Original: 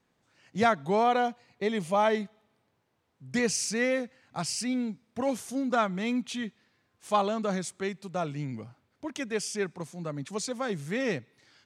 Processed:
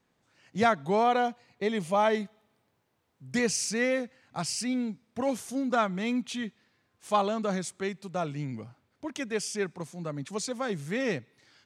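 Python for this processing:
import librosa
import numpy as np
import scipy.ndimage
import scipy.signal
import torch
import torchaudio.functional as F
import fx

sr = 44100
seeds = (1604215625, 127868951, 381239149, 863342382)

y = fx.high_shelf(x, sr, hz=10000.0, db=6.5, at=(2.13, 3.44))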